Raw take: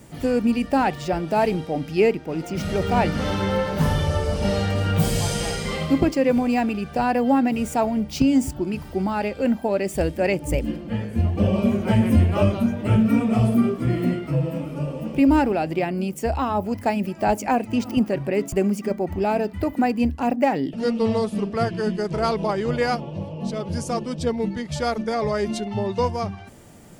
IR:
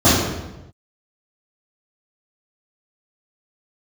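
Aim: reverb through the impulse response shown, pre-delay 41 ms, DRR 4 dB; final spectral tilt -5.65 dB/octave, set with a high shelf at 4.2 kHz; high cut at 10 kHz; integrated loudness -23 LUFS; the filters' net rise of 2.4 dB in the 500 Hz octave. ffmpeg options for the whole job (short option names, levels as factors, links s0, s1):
-filter_complex "[0:a]lowpass=10000,equalizer=f=500:t=o:g=3,highshelf=f=4200:g=-7.5,asplit=2[s0][s1];[1:a]atrim=start_sample=2205,adelay=41[s2];[s1][s2]afir=irnorm=-1:irlink=0,volume=0.0316[s3];[s0][s3]amix=inputs=2:normalize=0,volume=0.447"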